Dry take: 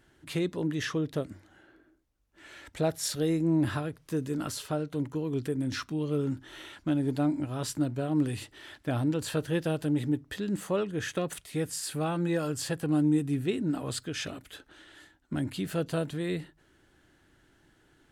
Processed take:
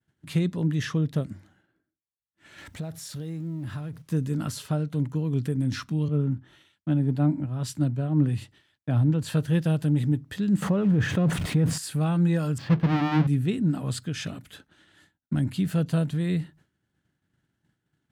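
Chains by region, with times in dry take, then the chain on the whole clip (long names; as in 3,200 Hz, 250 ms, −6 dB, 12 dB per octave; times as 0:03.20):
0:02.58–0:04.02: mu-law and A-law mismatch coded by mu + downward compressor 2.5 to 1, threshold −42 dBFS
0:06.08–0:09.29: high-shelf EQ 3,500 Hz −9 dB + multiband upward and downward expander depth 70%
0:10.62–0:11.78: converter with a step at zero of −40 dBFS + low-pass filter 1,100 Hz 6 dB per octave + envelope flattener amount 70%
0:12.58–0:13.27: each half-wave held at its own peak + high-frequency loss of the air 310 metres + mains-hum notches 50/100/150/200/250/300/350/400/450 Hz
whole clip: low shelf with overshoot 250 Hz +8.5 dB, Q 1.5; downward expander −47 dBFS; high-pass filter 99 Hz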